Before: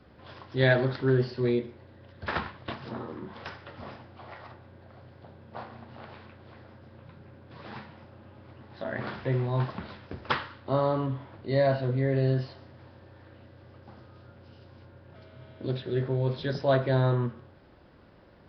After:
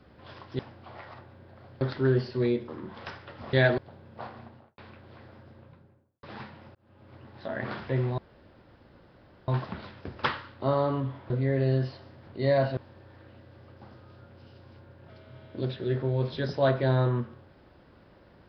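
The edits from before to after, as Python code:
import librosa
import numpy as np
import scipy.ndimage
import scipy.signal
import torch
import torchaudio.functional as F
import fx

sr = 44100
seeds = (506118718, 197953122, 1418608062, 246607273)

y = fx.studio_fade_out(x, sr, start_s=5.75, length_s=0.39)
y = fx.studio_fade_out(y, sr, start_s=6.75, length_s=0.84)
y = fx.edit(y, sr, fx.swap(start_s=0.59, length_s=0.25, other_s=3.92, other_length_s=1.22),
    fx.cut(start_s=1.71, length_s=1.36),
    fx.fade_in_span(start_s=8.11, length_s=0.42),
    fx.insert_room_tone(at_s=9.54, length_s=1.3),
    fx.move(start_s=11.36, length_s=0.5, to_s=12.83), tone=tone)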